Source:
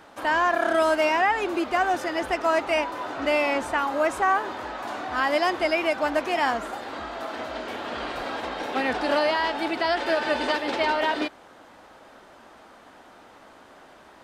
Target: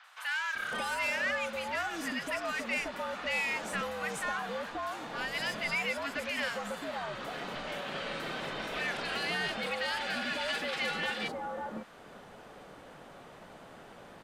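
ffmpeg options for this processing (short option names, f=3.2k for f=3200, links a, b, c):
-filter_complex "[0:a]asettb=1/sr,asplit=3[a][b][c];[a]atrim=end=4.704[d];[b]atrim=start=4.7:end=5.35,asetpts=PTS-STARTPTS,afade=t=in:d=0.004:c=qsin,afade=t=out:st=0.646:d=0.004:c=qsin,equalizer=f=1.2k:t=o:w=2.9:g=-5.5[e];[c]atrim=start=5.346[f];[d][e]acrossfade=d=0.004:c1=hsin:c2=qsin[g];[g][f]acrossfade=d=0.004:c1=qsin:c2=hsin,acrossover=split=1400[h][i];[h]acompressor=threshold=-37dB:ratio=6[j];[j][i]amix=inputs=2:normalize=0,afreqshift=-84,asoftclip=type=tanh:threshold=-24.5dB,acrossover=split=1100|5200[k][l][m];[m]adelay=40[n];[k]adelay=550[o];[o][l][n]amix=inputs=3:normalize=0"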